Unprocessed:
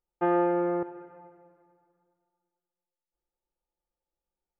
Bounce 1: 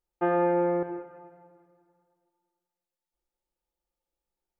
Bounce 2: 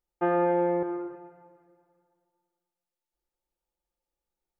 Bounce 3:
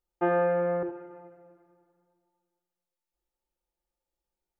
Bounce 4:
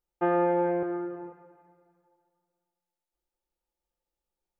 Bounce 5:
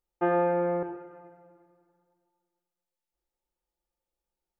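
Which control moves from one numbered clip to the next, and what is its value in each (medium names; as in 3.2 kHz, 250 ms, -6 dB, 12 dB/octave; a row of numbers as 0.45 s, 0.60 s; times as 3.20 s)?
gated-style reverb, gate: 230 ms, 340 ms, 100 ms, 520 ms, 150 ms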